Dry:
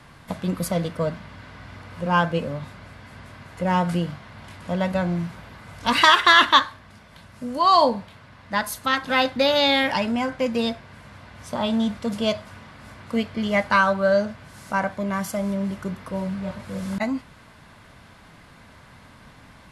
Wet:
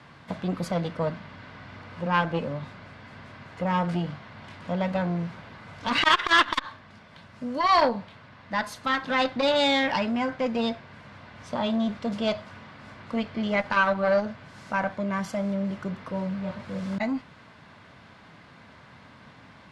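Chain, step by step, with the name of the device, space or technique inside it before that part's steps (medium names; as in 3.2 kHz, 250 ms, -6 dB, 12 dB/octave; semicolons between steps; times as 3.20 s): valve radio (band-pass 100–5000 Hz; valve stage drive 8 dB, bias 0.35; transformer saturation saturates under 1.1 kHz)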